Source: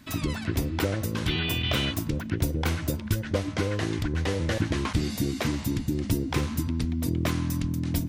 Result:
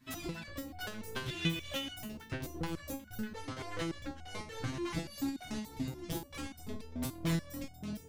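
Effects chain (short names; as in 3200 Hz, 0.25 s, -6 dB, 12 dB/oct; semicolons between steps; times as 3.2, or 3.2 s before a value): soft clip -28.5 dBFS, distortion -8 dB; tremolo saw up 3.4 Hz, depth 80%; stepped resonator 6.9 Hz 130–730 Hz; gain +12 dB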